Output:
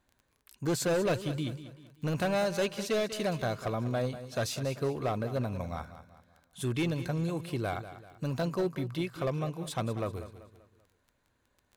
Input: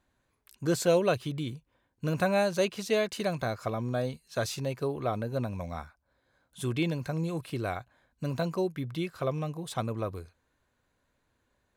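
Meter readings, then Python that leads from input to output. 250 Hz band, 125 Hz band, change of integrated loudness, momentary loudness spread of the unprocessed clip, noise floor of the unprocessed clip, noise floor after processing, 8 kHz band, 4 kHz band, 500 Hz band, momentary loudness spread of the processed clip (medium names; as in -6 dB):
-1.0 dB, 0.0 dB, -1.5 dB, 11 LU, -76 dBFS, -74 dBFS, 0.0 dB, -0.5 dB, -2.0 dB, 10 LU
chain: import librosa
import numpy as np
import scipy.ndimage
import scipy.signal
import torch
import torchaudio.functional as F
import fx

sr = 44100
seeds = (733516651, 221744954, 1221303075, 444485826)

y = np.clip(x, -10.0 ** (-25.0 / 20.0), 10.0 ** (-25.0 / 20.0))
y = fx.dmg_crackle(y, sr, seeds[0], per_s=12.0, level_db=-45.0)
y = fx.echo_feedback(y, sr, ms=193, feedback_pct=41, wet_db=-13)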